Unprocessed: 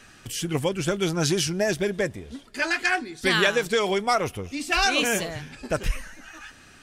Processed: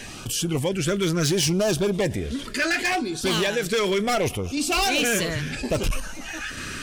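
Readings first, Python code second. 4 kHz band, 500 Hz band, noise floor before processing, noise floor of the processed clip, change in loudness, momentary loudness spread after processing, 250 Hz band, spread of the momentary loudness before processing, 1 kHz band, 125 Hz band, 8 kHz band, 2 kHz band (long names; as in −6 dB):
+1.5 dB, +1.5 dB, −51 dBFS, −37 dBFS, +0.5 dB, 9 LU, +3.5 dB, 16 LU, −1.0 dB, +4.0 dB, +3.5 dB, −1.0 dB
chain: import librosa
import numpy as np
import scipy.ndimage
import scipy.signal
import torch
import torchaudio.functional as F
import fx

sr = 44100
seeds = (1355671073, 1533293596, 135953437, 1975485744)

y = fx.tremolo_random(x, sr, seeds[0], hz=3.5, depth_pct=65)
y = np.clip(y, -10.0 ** (-23.5 / 20.0), 10.0 ** (-23.5 / 20.0))
y = fx.filter_lfo_notch(y, sr, shape='sine', hz=0.71, low_hz=750.0, high_hz=2000.0, q=1.9)
y = fx.env_flatten(y, sr, amount_pct=50)
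y = y * librosa.db_to_amplitude(4.5)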